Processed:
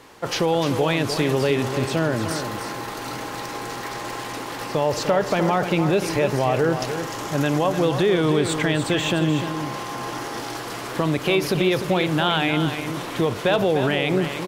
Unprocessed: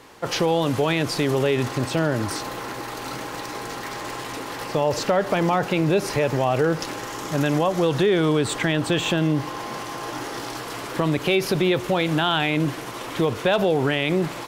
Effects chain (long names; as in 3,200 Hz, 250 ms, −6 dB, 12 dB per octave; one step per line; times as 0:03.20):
single-tap delay 300 ms −8.5 dB
feedback echo with a swinging delay time 359 ms, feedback 63%, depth 183 cents, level −19 dB